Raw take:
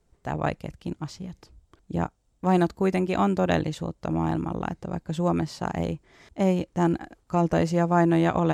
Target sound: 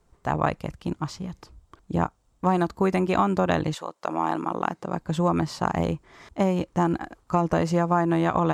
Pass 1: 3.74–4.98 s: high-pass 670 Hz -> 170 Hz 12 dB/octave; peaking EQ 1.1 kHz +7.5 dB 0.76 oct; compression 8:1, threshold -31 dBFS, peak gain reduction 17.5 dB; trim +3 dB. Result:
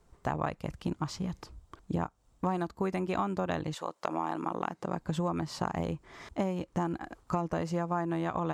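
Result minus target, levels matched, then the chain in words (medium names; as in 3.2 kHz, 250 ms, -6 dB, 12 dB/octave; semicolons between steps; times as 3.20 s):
compression: peak gain reduction +9.5 dB
3.74–4.98 s: high-pass 670 Hz -> 170 Hz 12 dB/octave; peaking EQ 1.1 kHz +7.5 dB 0.76 oct; compression 8:1, threshold -20 dBFS, peak gain reduction 8 dB; trim +3 dB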